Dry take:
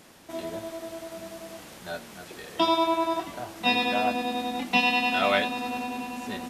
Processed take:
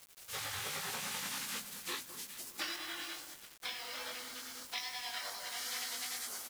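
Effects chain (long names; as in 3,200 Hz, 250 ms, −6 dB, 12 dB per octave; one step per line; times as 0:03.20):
high-pass filter sweep 150 Hz → 2,600 Hz, 0:00.18–0:03.50
chorus effect 2.4 Hz, delay 17 ms, depth 6.5 ms
0:02.76–0:04.78: high-shelf EQ 2,300 Hz −9.5 dB
downward compressor 8 to 1, threshold −32 dBFS, peak gain reduction 14.5 dB
gate on every frequency bin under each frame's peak −25 dB weak
parametric band 140 Hz +5 dB 2.8 octaves
mains-hum notches 50/100/150/200/250 Hz
double-tracking delay 20 ms −6 dB
delay that swaps between a low-pass and a high-pass 207 ms, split 1,400 Hz, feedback 75%, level −11 dB
bit reduction 10 bits
level +11 dB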